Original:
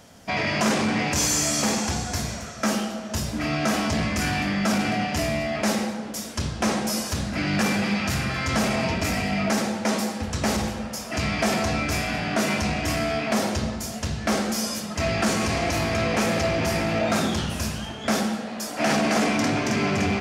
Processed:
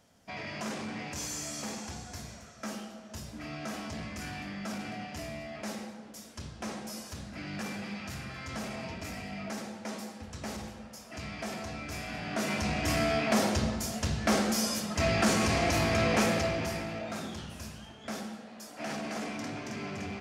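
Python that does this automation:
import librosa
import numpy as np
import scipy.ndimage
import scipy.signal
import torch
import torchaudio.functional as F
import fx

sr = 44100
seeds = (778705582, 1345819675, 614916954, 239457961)

y = fx.gain(x, sr, db=fx.line((11.79, -15.0), (13.0, -3.0), (16.21, -3.0), (17.05, -15.0)))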